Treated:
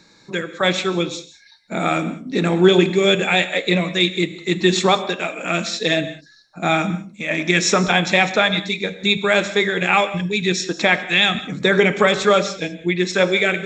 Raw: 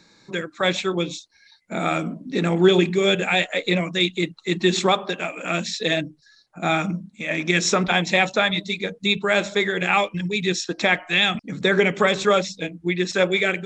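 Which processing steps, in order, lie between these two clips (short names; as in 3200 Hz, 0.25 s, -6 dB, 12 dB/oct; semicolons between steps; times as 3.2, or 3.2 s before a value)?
non-linear reverb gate 0.22 s flat, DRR 12 dB; gain +3 dB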